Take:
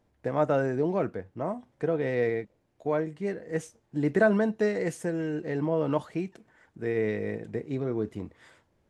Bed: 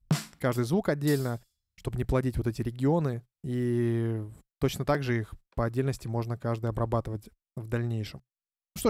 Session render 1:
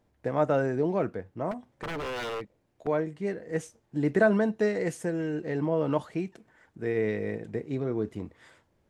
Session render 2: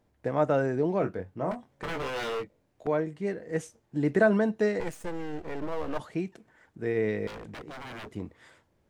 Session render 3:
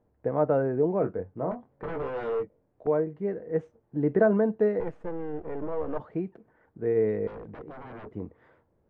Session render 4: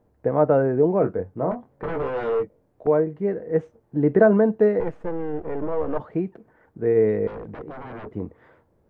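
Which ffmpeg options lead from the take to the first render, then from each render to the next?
ffmpeg -i in.wav -filter_complex "[0:a]asettb=1/sr,asplit=3[link_01][link_02][link_03];[link_01]atrim=end=1.514[link_04];[link_02]atrim=start=1.51:end=2.87,asetpts=PTS-STARTPTS,afade=type=in:duration=0.004:curve=qsin,afade=type=out:start_time=1.356:duration=0.004:curve=qsin,aeval=exprs='0.0355*(abs(mod(val(0)/0.0355+3,4)-2)-1)':channel_layout=same[link_05];[link_03]atrim=start=2.866[link_06];[link_04][link_05]acrossfade=duration=0.004:curve1=hsin:curve2=qsin[link_07];[link_07][link_06]acrossfade=duration=0.004:curve1=qsin:curve2=hsin" out.wav
ffmpeg -i in.wav -filter_complex "[0:a]asettb=1/sr,asplit=3[link_01][link_02][link_03];[link_01]atrim=end=0.994[link_04];[link_02]atrim=start=0.99:end=2.87,asetpts=PTS-STARTPTS,afade=type=in:duration=0.004:curve=qsin,afade=type=out:start_time=1.876:duration=0.004:curve=qsin,asplit=2[link_05][link_06];[link_06]adelay=22,volume=-6dB[link_07];[link_05][link_07]amix=inputs=2:normalize=0,atrim=end_sample=82908[link_08];[link_03]atrim=start=2.866[link_09];[link_04][link_08]acrossfade=duration=0.004:curve1=hsin:curve2=qsin[link_10];[link_10][link_09]acrossfade=duration=0.004:curve1=qsin:curve2=hsin,asettb=1/sr,asplit=3[link_11][link_12][link_13];[link_11]atrim=end=4.804[link_14];[link_12]atrim=start=4.8:end=6,asetpts=PTS-STARTPTS,afade=type=in:duration=0.004:curve=qsin,afade=type=out:start_time=1.196:duration=0.004:curve=qsin,aeval=exprs='max(val(0),0)':channel_layout=same[link_15];[link_13]atrim=start=5.996[link_16];[link_14][link_15]acrossfade=duration=0.004:curve1=hsin:curve2=qsin[link_17];[link_17][link_16]acrossfade=duration=0.004:curve1=qsin:curve2=hsin,asettb=1/sr,asplit=3[link_18][link_19][link_20];[link_18]atrim=end=7.274[link_21];[link_19]atrim=start=7.27:end=8.14,asetpts=PTS-STARTPTS,afade=type=in:duration=0.004:curve=qsin,afade=type=out:start_time=0.866:duration=0.004:curve=qsin,aeval=exprs='0.015*(abs(mod(val(0)/0.015+3,4)-2)-1)':channel_layout=same[link_22];[link_20]atrim=start=8.136[link_23];[link_21][link_22]acrossfade=duration=0.004:curve1=hsin:curve2=qsin[link_24];[link_24][link_23]acrossfade=duration=0.004:curve1=qsin:curve2=hsin" out.wav
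ffmpeg -i in.wav -af "lowpass=1200,equalizer=frequency=460:width_type=o:width=0.27:gain=5" out.wav
ffmpeg -i in.wav -af "volume=6dB" out.wav

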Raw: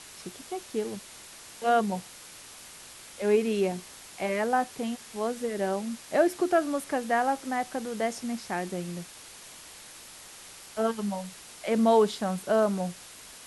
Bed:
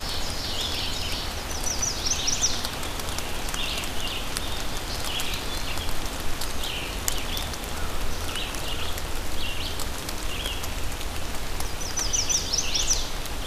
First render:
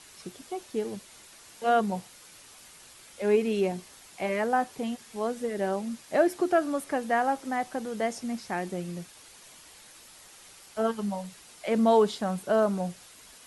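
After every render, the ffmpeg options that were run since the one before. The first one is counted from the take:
ffmpeg -i in.wav -af "afftdn=noise_reduction=6:noise_floor=-48" out.wav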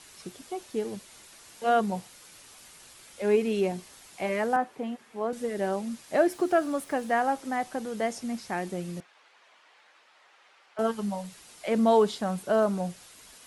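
ffmpeg -i in.wav -filter_complex "[0:a]asettb=1/sr,asplit=3[link_01][link_02][link_03];[link_01]atrim=end=4.564[link_04];[link_02]atrim=start=4.56:end=5.33,asetpts=PTS-STARTPTS,afade=type=in:duration=0.004:curve=qsin,afade=type=out:start_time=0.766:duration=0.004:curve=qsin,acrossover=split=180 2600:gain=0.224 1 0.224[link_05][link_06][link_07];[link_05][link_06][link_07]amix=inputs=3:normalize=0[link_08];[link_03]atrim=start=5.326[link_09];[link_04][link_08]acrossfade=duration=0.004:curve1=hsin:curve2=qsin[link_10];[link_10][link_09]acrossfade=duration=0.004:curve1=qsin:curve2=hsin,asettb=1/sr,asplit=3[link_11][link_12][link_13];[link_11]atrim=end=6.294[link_14];[link_12]atrim=start=6.29:end=7.14,asetpts=PTS-STARTPTS,afade=type=in:duration=0.004:curve=qsin,afade=type=out:start_time=0.846:duration=0.004:curve=qsin,aeval=exprs='val(0)*gte(abs(val(0)),0.00299)':channel_layout=same[link_15];[link_13]atrim=start=7.136[link_16];[link_14][link_15]acrossfade=duration=0.004:curve1=hsin:curve2=qsin[link_17];[link_17][link_16]acrossfade=duration=0.004:curve1=qsin:curve2=hsin,asettb=1/sr,asplit=3[link_18][link_19][link_20];[link_18]atrim=end=9.004[link_21];[link_19]atrim=start=9:end=10.79,asetpts=PTS-STARTPTS,afade=type=in:duration=0.004:curve=qsin,afade=type=out:start_time=1.786:duration=0.004:curve=qsin,highpass=660,lowpass=2300[link_22];[link_20]atrim=start=10.786[link_23];[link_21][link_22]acrossfade=duration=0.004:curve1=hsin:curve2=qsin[link_24];[link_24][link_23]acrossfade=duration=0.004:curve1=qsin:curve2=hsin" out.wav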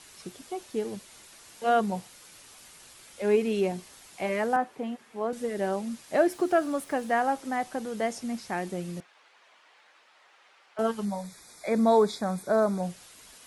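ffmpeg -i in.wav -filter_complex "[0:a]asettb=1/sr,asplit=3[link_01][link_02][link_03];[link_01]atrim=end=11.054[link_04];[link_02]atrim=start=11.05:end=12.83,asetpts=PTS-STARTPTS,afade=type=in:duration=0.004:curve=qsin,afade=type=out:start_time=1.776:duration=0.004:curve=qsin,asuperstop=centerf=2900:order=20:qfactor=3.4[link_05];[link_03]atrim=start=12.826[link_06];[link_04][link_05]acrossfade=duration=0.004:curve1=hsin:curve2=qsin[link_07];[link_07][link_06]acrossfade=duration=0.004:curve1=qsin:curve2=hsin" out.wav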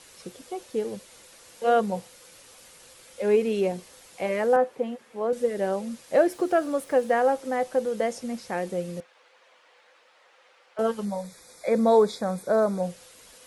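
ffmpeg -i in.wav -af "equalizer=frequency=510:width=7:gain=14.5" out.wav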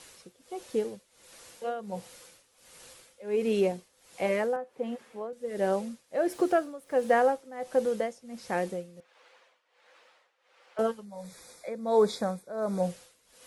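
ffmpeg -i in.wav -af "tremolo=f=1.4:d=0.86" out.wav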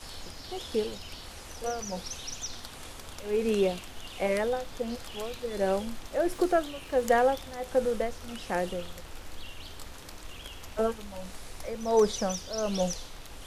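ffmpeg -i in.wav -i bed.wav -filter_complex "[1:a]volume=-14dB[link_01];[0:a][link_01]amix=inputs=2:normalize=0" out.wav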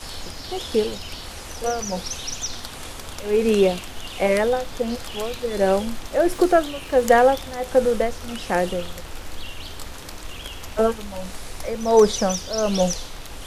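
ffmpeg -i in.wav -af "volume=8.5dB" out.wav

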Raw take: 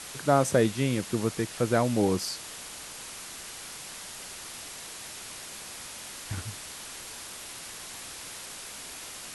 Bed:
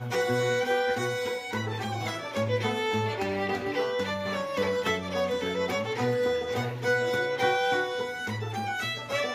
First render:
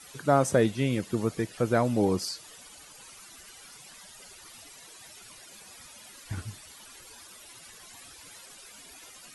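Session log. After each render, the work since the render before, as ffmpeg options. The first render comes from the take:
ffmpeg -i in.wav -af "afftdn=noise_reduction=14:noise_floor=-42" out.wav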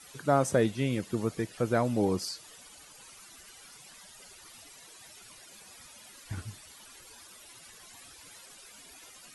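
ffmpeg -i in.wav -af "volume=-2.5dB" out.wav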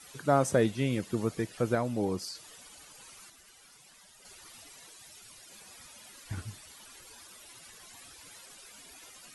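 ffmpeg -i in.wav -filter_complex "[0:a]asettb=1/sr,asplit=3[link_01][link_02][link_03];[link_01]atrim=end=4.904[link_04];[link_02]atrim=start=4.9:end=5.5,asetpts=PTS-STARTPTS,afade=type=in:duration=0.004:curve=qsin,afade=type=out:start_time=0.596:duration=0.004:curve=qsin,acrossover=split=160|3000[link_05][link_06][link_07];[link_06]acompressor=threshold=-59dB:ratio=2.5:attack=3.2:release=140:knee=2.83:detection=peak[link_08];[link_05][link_08][link_07]amix=inputs=3:normalize=0[link_09];[link_03]atrim=start=5.496[link_10];[link_04][link_09]acrossfade=duration=0.004:curve1=hsin:curve2=qsin[link_11];[link_11][link_10]acrossfade=duration=0.004:curve1=qsin:curve2=hsin,asplit=5[link_12][link_13][link_14][link_15][link_16];[link_12]atrim=end=1.752[link_17];[link_13]atrim=start=1.748:end=2.352,asetpts=PTS-STARTPTS,volume=-3.5dB[link_18];[link_14]atrim=start=2.348:end=3.302[link_19];[link_15]atrim=start=3.298:end=4.252,asetpts=PTS-STARTPTS,volume=-5.5dB[link_20];[link_16]atrim=start=4.248[link_21];[link_17][link_18]acrossfade=duration=0.004:curve1=hsin:curve2=hsin[link_22];[link_22][link_19]acrossfade=duration=0.004:curve1=hsin:curve2=hsin[link_23];[link_23][link_20]acrossfade=duration=0.004:curve1=hsin:curve2=hsin[link_24];[link_24][link_21]acrossfade=duration=0.004:curve1=hsin:curve2=hsin" out.wav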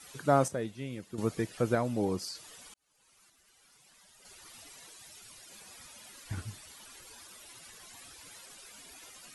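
ffmpeg -i in.wav -filter_complex "[0:a]asplit=4[link_01][link_02][link_03][link_04];[link_01]atrim=end=0.482[link_05];[link_02]atrim=start=0.478:end=1.182,asetpts=PTS-STARTPTS,volume=-10dB[link_06];[link_03]atrim=start=1.178:end=2.74,asetpts=PTS-STARTPTS,afade=type=out:start_time=1.558:duration=0.004:curve=hsin[link_07];[link_04]atrim=start=2.74,asetpts=PTS-STARTPTS,afade=type=in:duration=1.92[link_08];[link_05][link_06]acrossfade=duration=0.004:curve1=hsin:curve2=hsin[link_09];[link_07][link_08]concat=n=2:v=0:a=1[link_10];[link_09][link_10]acrossfade=duration=0.004:curve1=hsin:curve2=hsin" out.wav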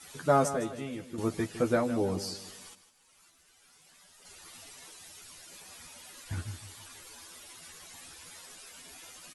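ffmpeg -i in.wav -filter_complex "[0:a]asplit=2[link_01][link_02];[link_02]adelay=12,volume=-3.5dB[link_03];[link_01][link_03]amix=inputs=2:normalize=0,aecho=1:1:157|314|471|628:0.237|0.0877|0.0325|0.012" out.wav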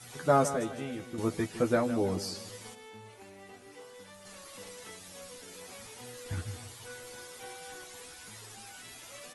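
ffmpeg -i in.wav -i bed.wav -filter_complex "[1:a]volume=-22dB[link_01];[0:a][link_01]amix=inputs=2:normalize=0" out.wav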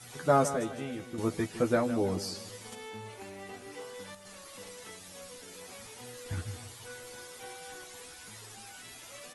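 ffmpeg -i in.wav -filter_complex "[0:a]asettb=1/sr,asplit=3[link_01][link_02][link_03];[link_01]atrim=end=2.724[link_04];[link_02]atrim=start=2.72:end=4.15,asetpts=PTS-STARTPTS,afade=type=in:duration=0.004:curve=qsin,afade=type=out:start_time=1.426:duration=0.004:curve=qsin,acontrast=51[link_05];[link_03]atrim=start=4.146[link_06];[link_04][link_05]acrossfade=duration=0.004:curve1=hsin:curve2=qsin[link_07];[link_07][link_06]acrossfade=duration=0.004:curve1=qsin:curve2=hsin" out.wav

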